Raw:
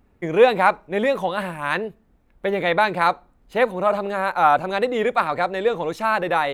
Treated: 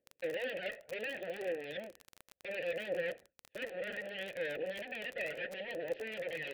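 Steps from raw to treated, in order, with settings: phaser 0.67 Hz, delay 1.6 ms, feedback 71%; full-wave rectifier; valve stage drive 8 dB, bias 0.6; low-pass 3.5 kHz 24 dB/octave; peak limiter -27 dBFS, peak gain reduction 9 dB; vowel filter e; peaking EQ 1.1 kHz -11.5 dB 0.77 oct; gate with hold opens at -48 dBFS; crackle 33 per s -45 dBFS; trim +9.5 dB

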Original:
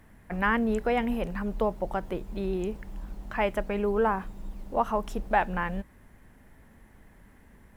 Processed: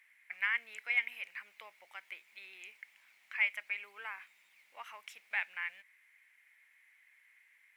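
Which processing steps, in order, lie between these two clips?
resonant high-pass 2.2 kHz, resonance Q 7.5; trim -9 dB

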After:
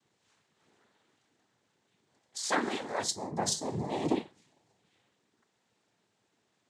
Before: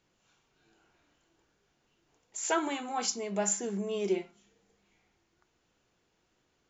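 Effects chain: 3.03–3.65 s: elliptic band-stop 950–5400 Hz; noise-vocoded speech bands 6

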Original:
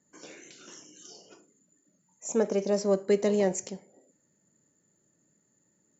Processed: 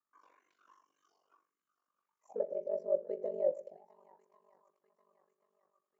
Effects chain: de-hum 99.78 Hz, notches 5; on a send: shuffle delay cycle 1090 ms, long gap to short 1.5:1, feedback 42%, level -19 dB; on the sum: auto-wah 550–1200 Hz, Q 15, down, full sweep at -28.5 dBFS; ring modulator 24 Hz; trim +6.5 dB

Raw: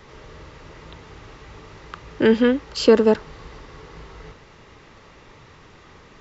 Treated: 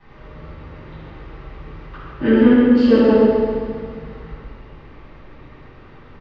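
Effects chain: distance through air 270 m; on a send: feedback delay 134 ms, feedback 59%, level -7 dB; on the sum: simulated room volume 960 m³, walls mixed, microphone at 9.6 m; trim -12.5 dB

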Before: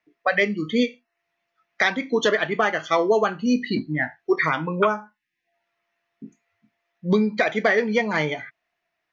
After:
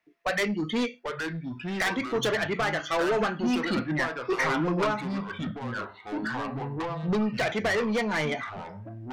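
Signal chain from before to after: saturation -22.5 dBFS, distortion -8 dB; ever faster or slower copies 722 ms, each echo -4 st, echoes 2, each echo -6 dB

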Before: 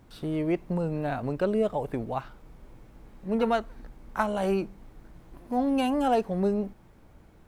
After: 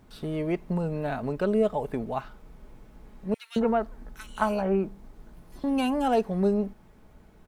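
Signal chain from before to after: comb 4.7 ms, depth 31%; 3.34–5.64 s: bands offset in time highs, lows 220 ms, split 2.2 kHz

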